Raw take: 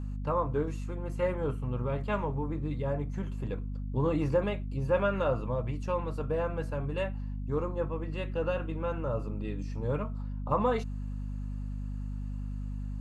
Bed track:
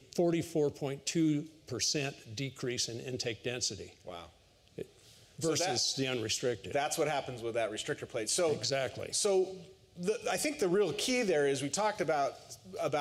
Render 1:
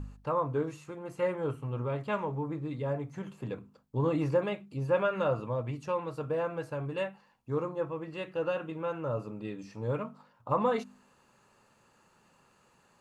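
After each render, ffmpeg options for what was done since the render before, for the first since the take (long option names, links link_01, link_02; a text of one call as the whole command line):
ffmpeg -i in.wav -af "bandreject=frequency=50:width_type=h:width=4,bandreject=frequency=100:width_type=h:width=4,bandreject=frequency=150:width_type=h:width=4,bandreject=frequency=200:width_type=h:width=4,bandreject=frequency=250:width_type=h:width=4" out.wav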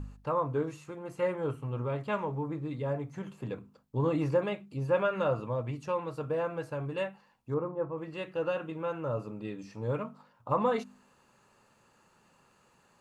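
ffmpeg -i in.wav -filter_complex "[0:a]asettb=1/sr,asplit=3[link_01][link_02][link_03];[link_01]atrim=end=7.544[link_04];[link_02]atrim=start=7.54:end=7.98,asetpts=PTS-STARTPTS,afade=type=in:duration=0.004:curve=qsin,afade=type=out:start_time=0.436:duration=0.004:curve=qsin,lowpass=1300[link_05];[link_03]atrim=start=7.976[link_06];[link_04][link_05]acrossfade=duration=0.004:curve1=hsin:curve2=qsin[link_07];[link_07][link_06]acrossfade=duration=0.004:curve1=qsin:curve2=hsin" out.wav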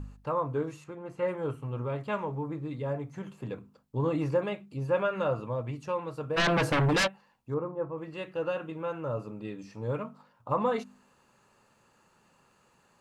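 ffmpeg -i in.wav -filter_complex "[0:a]asettb=1/sr,asplit=3[link_01][link_02][link_03];[link_01]atrim=end=0.844[link_04];[link_02]atrim=start=0.84:end=1.28,asetpts=PTS-STARTPTS,afade=type=in:duration=0.004:curve=qsin,afade=type=out:start_time=0.436:duration=0.004:curve=qsin,lowpass=frequency=3000:poles=1[link_05];[link_03]atrim=start=1.276[link_06];[link_04][link_05]acrossfade=duration=0.004:curve1=hsin:curve2=qsin[link_07];[link_07][link_06]acrossfade=duration=0.004:curve1=qsin:curve2=hsin,asplit=3[link_08][link_09][link_10];[link_08]afade=type=out:start_time=6.36:duration=0.02[link_11];[link_09]aeval=exprs='0.0841*sin(PI/2*5.01*val(0)/0.0841)':channel_layout=same,afade=type=in:start_time=6.36:duration=0.02,afade=type=out:start_time=7.06:duration=0.02[link_12];[link_10]afade=type=in:start_time=7.06:duration=0.02[link_13];[link_11][link_12][link_13]amix=inputs=3:normalize=0" out.wav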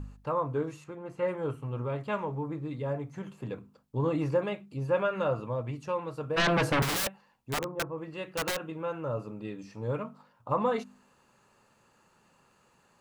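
ffmpeg -i in.wav -filter_complex "[0:a]asettb=1/sr,asplit=3[link_01][link_02][link_03];[link_01]atrim=end=6.824[link_04];[link_02]atrim=start=6.82:end=8.67,asetpts=PTS-STARTPTS,afade=type=in:duration=0.004:curve=qsin,afade=type=out:start_time=1.846:duration=0.004:curve=qsin,aeval=exprs='(mod(18.8*val(0)+1,2)-1)/18.8':channel_layout=same[link_05];[link_03]atrim=start=8.666[link_06];[link_04][link_05]acrossfade=duration=0.004:curve1=hsin:curve2=qsin[link_07];[link_07][link_06]acrossfade=duration=0.004:curve1=qsin:curve2=hsin" out.wav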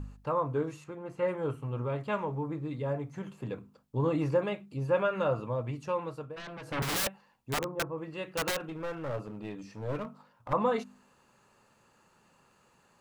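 ffmpeg -i in.wav -filter_complex "[0:a]asettb=1/sr,asplit=3[link_01][link_02][link_03];[link_01]atrim=end=8.604[link_04];[link_02]atrim=start=8.6:end=10.53,asetpts=PTS-STARTPTS,afade=type=in:duration=0.004:curve=qsin,afade=type=out:start_time=1.926:duration=0.004:curve=qsin,aeval=exprs='clip(val(0),-1,0.015)':channel_layout=same[link_05];[link_03]atrim=start=10.526[link_06];[link_04][link_05]acrossfade=duration=0.004:curve1=hsin:curve2=qsin[link_07];[link_07][link_06]acrossfade=duration=0.004:curve1=qsin:curve2=hsin,asplit=3[link_08][link_09][link_10];[link_08]atrim=end=6.39,asetpts=PTS-STARTPTS,afade=type=out:start_time=6.06:duration=0.33:silence=0.11885[link_11];[link_09]atrim=start=6.39:end=6.65,asetpts=PTS-STARTPTS,volume=-18.5dB[link_12];[link_10]atrim=start=6.65,asetpts=PTS-STARTPTS,afade=type=in:duration=0.33:silence=0.11885[link_13];[link_11][link_12][link_13]concat=n=3:v=0:a=1" out.wav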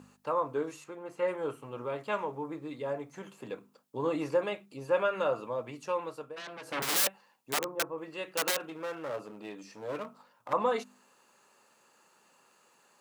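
ffmpeg -i in.wav -af "highpass=300,highshelf=frequency=4400:gain=6.5" out.wav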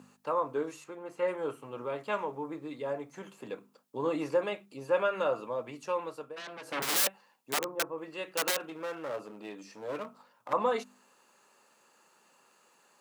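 ffmpeg -i in.wav -af "highpass=140" out.wav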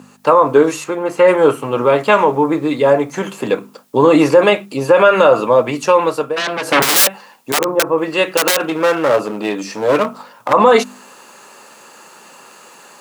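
ffmpeg -i in.wav -af "dynaudnorm=framelen=130:gausssize=3:maxgain=9.5dB,alimiter=level_in=14dB:limit=-1dB:release=50:level=0:latency=1" out.wav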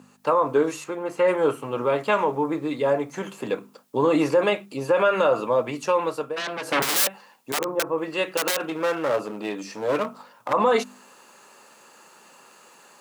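ffmpeg -i in.wav -af "volume=-10dB" out.wav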